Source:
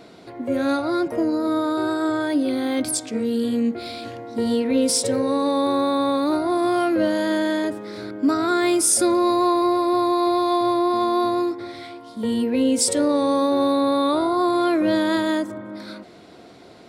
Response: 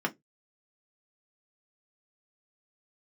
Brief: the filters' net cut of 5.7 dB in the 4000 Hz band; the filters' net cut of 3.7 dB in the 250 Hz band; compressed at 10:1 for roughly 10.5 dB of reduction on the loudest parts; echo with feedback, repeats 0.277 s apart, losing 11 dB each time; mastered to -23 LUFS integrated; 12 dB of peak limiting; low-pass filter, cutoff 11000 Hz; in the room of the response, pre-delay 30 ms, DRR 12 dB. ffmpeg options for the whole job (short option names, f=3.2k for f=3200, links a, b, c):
-filter_complex "[0:a]lowpass=11k,equalizer=f=250:t=o:g=-5,equalizer=f=4k:t=o:g=-7,acompressor=threshold=-28dB:ratio=10,alimiter=level_in=7dB:limit=-24dB:level=0:latency=1,volume=-7dB,aecho=1:1:277|554|831:0.282|0.0789|0.0221,asplit=2[a][b];[1:a]atrim=start_sample=2205,adelay=30[c];[b][c]afir=irnorm=-1:irlink=0,volume=-20dB[d];[a][d]amix=inputs=2:normalize=0,volume=15.5dB"